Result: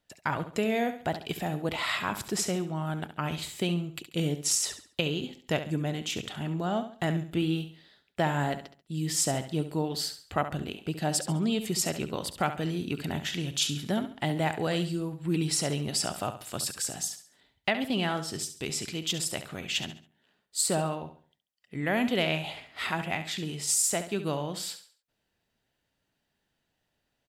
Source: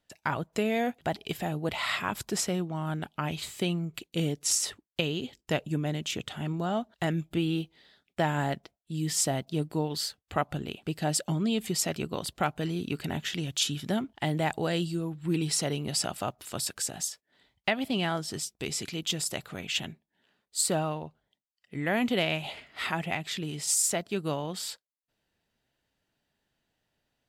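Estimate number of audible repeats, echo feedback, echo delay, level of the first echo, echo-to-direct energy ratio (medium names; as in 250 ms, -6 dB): 3, 35%, 69 ms, -11.0 dB, -10.5 dB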